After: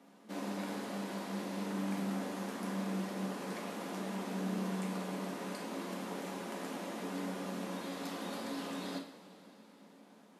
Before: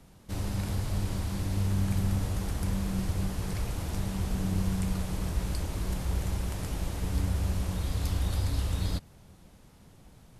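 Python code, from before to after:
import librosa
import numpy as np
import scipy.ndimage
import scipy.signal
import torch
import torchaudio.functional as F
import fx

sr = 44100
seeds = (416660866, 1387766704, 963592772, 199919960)

y = scipy.signal.sosfilt(scipy.signal.cheby1(4, 1.0, 220.0, 'highpass', fs=sr, output='sos'), x)
y = fx.high_shelf(y, sr, hz=4100.0, db=-11.0)
y = fx.rev_double_slope(y, sr, seeds[0], early_s=0.45, late_s=3.8, knee_db=-18, drr_db=0.5)
y = y * 10.0 ** (-1.0 / 20.0)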